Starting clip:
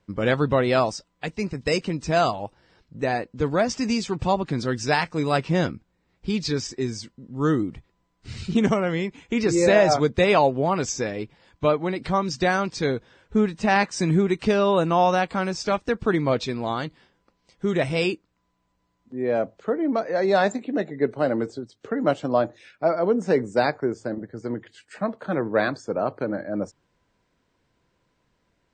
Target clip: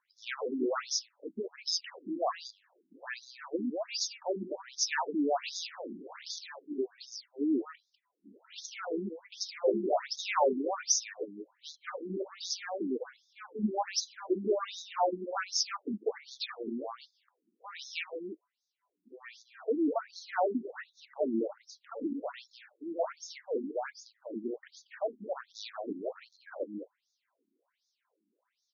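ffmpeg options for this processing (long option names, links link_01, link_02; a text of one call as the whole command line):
ffmpeg -i in.wav -filter_complex "[0:a]asettb=1/sr,asplit=3[link_01][link_02][link_03];[link_01]atrim=end=4.894[link_04];[link_02]atrim=start=4.89:end=6.4,asetpts=PTS-STARTPTS,afade=type=in:duration=0.004:curve=qsin,afade=type=out:start_time=1.506:duration=0.004:curve=qsin,aeval=exprs='val(0)+0.5*0.0376*sgn(val(0))':channel_layout=same[link_05];[link_03]atrim=start=6.396[link_06];[link_04][link_05]acrossfade=duration=0.004:curve1=hsin:curve2=qsin[link_07];[link_07][link_06]acrossfade=duration=0.004:curve1=qsin:curve2=hsin,asettb=1/sr,asplit=3[link_08][link_09][link_10];[link_08]atrim=end=11.894[link_11];[link_09]atrim=start=11.89:end=12.9,asetpts=PTS-STARTPTS,afade=type=in:duration=0.004:curve=qsin,afade=type=out:start_time=1.006:duration=0.004:curve=qsin,equalizer=frequency=510:width_type=o:width=0.37:gain=13[link_12];[link_10]atrim=start=12.896[link_13];[link_11][link_12]acrossfade=duration=0.004:curve1=hsin:curve2=qsin[link_14];[link_14][link_13]acrossfade=duration=0.004:curve1=qsin:curve2=hsin,asplit=2[link_15][link_16];[link_16]aeval=exprs='0.0841*(abs(mod(val(0)/0.0841+3,4)-2)-1)':channel_layout=same,volume=-7.5dB[link_17];[link_15][link_17]amix=inputs=2:normalize=0,highshelf=frequency=4500:width_type=q:width=1.5:gain=7.5,asplit=2[link_18][link_19];[link_19]aecho=0:1:195:0.422[link_20];[link_18][link_20]amix=inputs=2:normalize=0,afftfilt=real='re*between(b*sr/1024,260*pow(4900/260,0.5+0.5*sin(2*PI*1.3*pts/sr))/1.41,260*pow(4900/260,0.5+0.5*sin(2*PI*1.3*pts/sr))*1.41)':imag='im*between(b*sr/1024,260*pow(4900/260,0.5+0.5*sin(2*PI*1.3*pts/sr))/1.41,260*pow(4900/260,0.5+0.5*sin(2*PI*1.3*pts/sr))*1.41)':win_size=1024:overlap=0.75,volume=-6dB" out.wav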